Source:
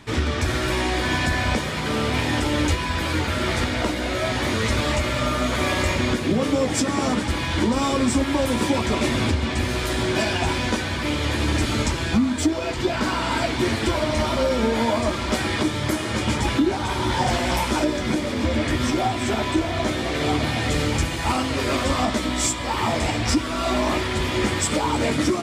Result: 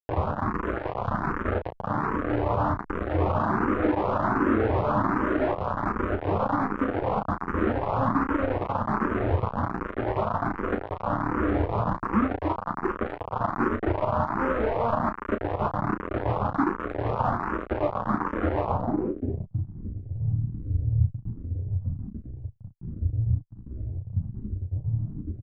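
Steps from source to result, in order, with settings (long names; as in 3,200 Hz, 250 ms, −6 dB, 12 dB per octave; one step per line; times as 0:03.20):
running median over 41 samples
hum removal 61.43 Hz, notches 9
0:03.20–0:05.54: parametric band 310 Hz +13 dB 1.5 octaves
downward compressor 2.5 to 1, threshold −23 dBFS, peak gain reduction 7.5 dB
bit reduction 4 bits
low-pass filter sweep 1,200 Hz → 110 Hz, 0:18.64–0:19.59
ambience of single reflections 10 ms −10.5 dB, 34 ms −7.5 dB
frequency shifter mixed with the dry sound +1.3 Hz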